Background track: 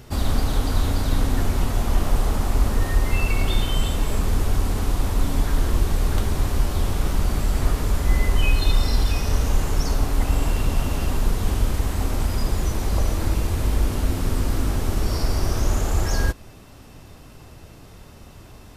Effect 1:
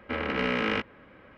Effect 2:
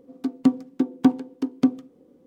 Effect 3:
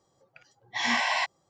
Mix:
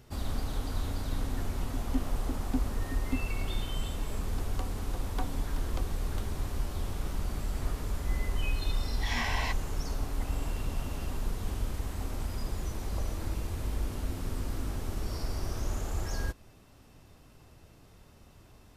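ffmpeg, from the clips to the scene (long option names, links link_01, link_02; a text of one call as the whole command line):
ffmpeg -i bed.wav -i cue0.wav -i cue1.wav -i cue2.wav -filter_complex "[2:a]asplit=2[link_01][link_02];[0:a]volume=-12dB[link_03];[link_02]highpass=frequency=540:width=0.5412,highpass=frequency=540:width=1.3066[link_04];[link_01]atrim=end=2.26,asetpts=PTS-STARTPTS,volume=-16dB,afade=type=in:duration=0.004:curve=hsin,afade=type=out:start_time=2.256:duration=0.004:curve=hsin,adelay=1490[link_05];[link_04]atrim=end=2.26,asetpts=PTS-STARTPTS,volume=-7.5dB,afade=type=in:duration=0.004:curve=hsin,afade=type=out:start_time=2.256:duration=0.004:curve=hsin,adelay=4140[link_06];[3:a]atrim=end=1.49,asetpts=PTS-STARTPTS,volume=-7.5dB,afade=type=in:duration=0.004:curve=hsin,afade=type=out:start_time=1.486:duration=0.004:curve=hsin,adelay=8270[link_07];[link_03][link_05][link_06][link_07]amix=inputs=4:normalize=0" out.wav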